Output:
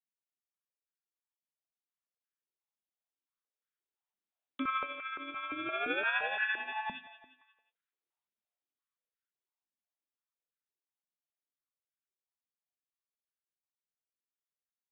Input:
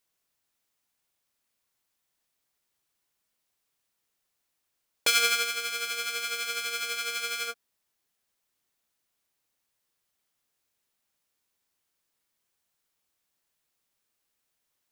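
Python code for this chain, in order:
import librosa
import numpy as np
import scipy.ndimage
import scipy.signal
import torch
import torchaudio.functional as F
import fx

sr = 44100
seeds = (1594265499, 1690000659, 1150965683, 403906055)

y = fx.doppler_pass(x, sr, speed_mps=32, closest_m=8.7, pass_at_s=6.01)
y = fx.freq_invert(y, sr, carrier_hz=3900)
y = fx.echo_feedback(y, sr, ms=178, feedback_pct=41, wet_db=-11.5)
y = fx.filter_held_highpass(y, sr, hz=5.8, low_hz=210.0, high_hz=1500.0)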